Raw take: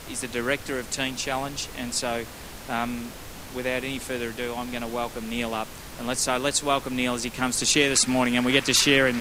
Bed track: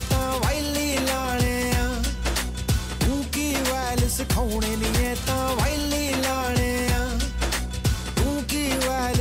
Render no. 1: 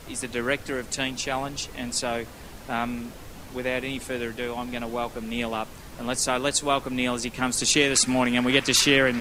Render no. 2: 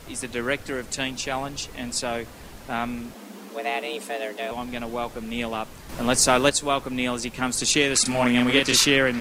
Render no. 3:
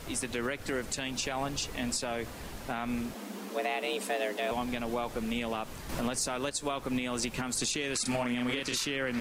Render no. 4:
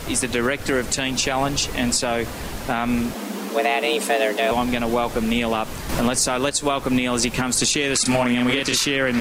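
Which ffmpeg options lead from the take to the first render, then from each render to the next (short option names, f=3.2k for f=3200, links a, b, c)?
-af "afftdn=nr=6:nf=-41"
-filter_complex "[0:a]asettb=1/sr,asplit=3[a][b][c];[a]atrim=end=3.144[d];[b]atrim=start=3.14:end=4.51,asetpts=PTS-STARTPTS,afade=t=in:d=0.004:c=qsin,afade=t=out:st=1.366:d=0.004:c=qsin,afreqshift=190[e];[c]atrim=start=4.506[f];[d][e]acrossfade=d=0.004:c1=hsin:c2=qsin[g];[g][f]acrossfade=d=0.004:c1=qsin:c2=hsin,asettb=1/sr,asplit=3[h][i][j];[h]atrim=end=5.894[k];[i]atrim=start=5.89:end=6.5,asetpts=PTS-STARTPTS,afade=t=in:d=0.004:c=qsin,afade=t=out:st=0.606:d=0.004:c=qsin,acontrast=75[l];[j]atrim=start=6.496[m];[k][l]acrossfade=d=0.004:c1=hsin:c2=qsin[n];[n][m]acrossfade=d=0.004:c1=qsin:c2=hsin,asettb=1/sr,asplit=3[o][p][q];[o]atrim=end=8.024[r];[p]atrim=start=8.02:end=8.85,asetpts=PTS-STARTPTS,afade=t=in:d=0.004:c=qsin,afade=t=out:st=0.826:d=0.004:c=qsin,asplit=2[s][t];[t]adelay=33,volume=-3dB[u];[s][u]amix=inputs=2:normalize=0,atrim=end_sample=36603[v];[q]atrim=start=8.846[w];[r][v]acrossfade=d=0.004:c1=hsin:c2=qsin[x];[x][w]acrossfade=d=0.004:c1=qsin:c2=hsin"
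-af "acompressor=threshold=-25dB:ratio=6,alimiter=limit=-21.5dB:level=0:latency=1:release=87"
-af "volume=12dB"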